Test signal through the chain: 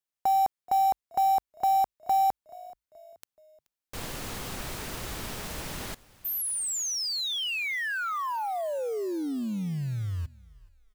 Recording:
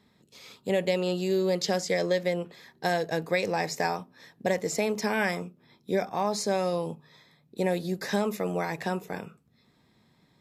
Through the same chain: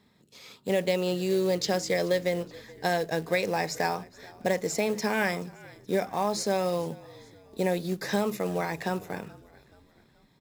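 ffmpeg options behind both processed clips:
-filter_complex "[0:a]acrusher=bits=5:mode=log:mix=0:aa=0.000001,asplit=2[s0][s1];[s1]asplit=3[s2][s3][s4];[s2]adelay=428,afreqshift=-52,volume=0.0794[s5];[s3]adelay=856,afreqshift=-104,volume=0.038[s6];[s4]adelay=1284,afreqshift=-156,volume=0.0182[s7];[s5][s6][s7]amix=inputs=3:normalize=0[s8];[s0][s8]amix=inputs=2:normalize=0"

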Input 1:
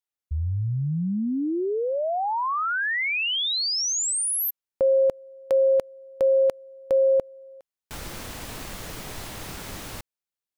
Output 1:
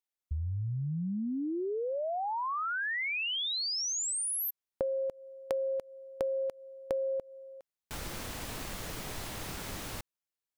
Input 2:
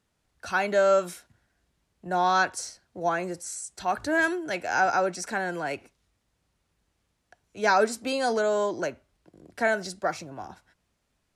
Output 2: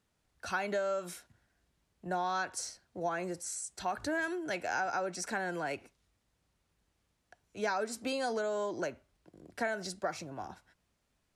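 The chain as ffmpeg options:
-af "acompressor=threshold=0.0316:ratio=6:attack=64:release=153:knee=6:detection=rms,volume=0.708"

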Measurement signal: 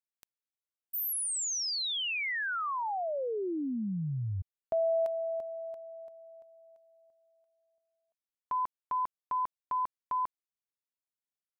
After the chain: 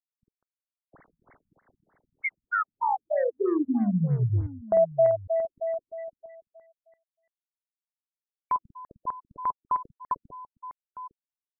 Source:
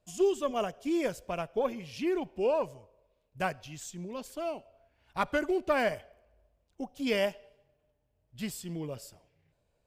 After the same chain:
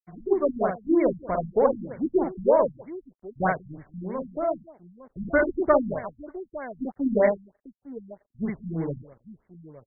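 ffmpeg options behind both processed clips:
-af "aeval=exprs='sgn(val(0))*max(abs(val(0))-0.00282,0)':c=same,aecho=1:1:49|195|856:0.668|0.119|0.168,afftfilt=real='re*lt(b*sr/1024,230*pow(2300/230,0.5+0.5*sin(2*PI*3.2*pts/sr)))':imag='im*lt(b*sr/1024,230*pow(2300/230,0.5+0.5*sin(2*PI*3.2*pts/sr)))':win_size=1024:overlap=0.75,volume=2.66"

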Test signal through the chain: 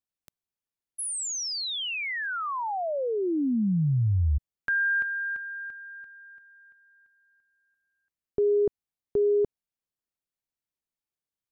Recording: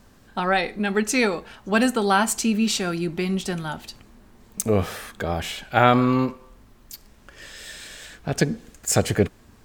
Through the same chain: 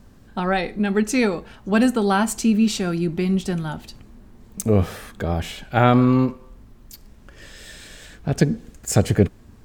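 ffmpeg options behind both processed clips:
-af "lowshelf=f=400:g=9.5,volume=0.708"

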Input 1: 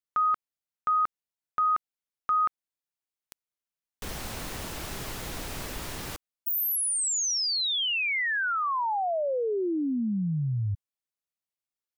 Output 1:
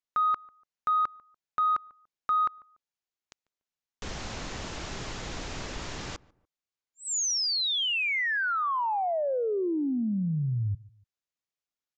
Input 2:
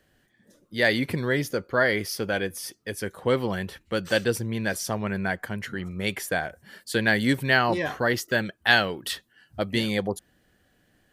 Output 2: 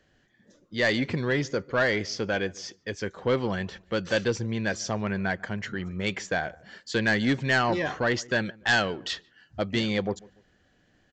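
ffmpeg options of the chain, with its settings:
-filter_complex "[0:a]aresample=16000,asoftclip=type=tanh:threshold=0.168,aresample=44100,asplit=2[s0][s1];[s1]adelay=145,lowpass=f=1200:p=1,volume=0.0794,asplit=2[s2][s3];[s3]adelay=145,lowpass=f=1200:p=1,volume=0.35[s4];[s0][s2][s4]amix=inputs=3:normalize=0"

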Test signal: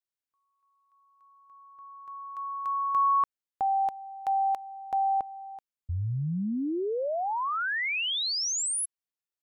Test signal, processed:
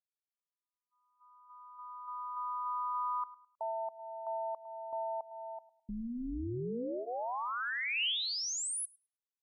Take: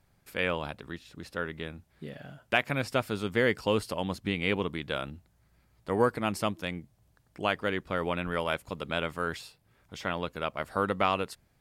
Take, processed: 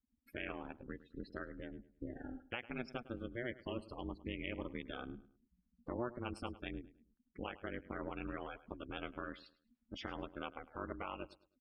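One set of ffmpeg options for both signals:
-filter_complex "[0:a]equalizer=f=140:w=1.1:g=6,acompressor=threshold=0.0178:ratio=5:attack=0.4:release=271:knee=6:detection=rms,bandreject=f=560:w=12,aeval=exprs='val(0)*sin(2*PI*120*n/s)':c=same,afftdn=nr=34:nf=-50,highpass=f=62:p=1,equalizer=f=2900:w=3.1:g=5.5,asplit=2[s0][s1];[s1]adelay=105,lowpass=f=3800:p=1,volume=0.141,asplit=2[s2][s3];[s3]adelay=105,lowpass=f=3800:p=1,volume=0.31,asplit=2[s4][s5];[s5]adelay=105,lowpass=f=3800:p=1,volume=0.31[s6];[s2][s4][s6]amix=inputs=3:normalize=0[s7];[s0][s7]amix=inputs=2:normalize=0,volume=1.33"

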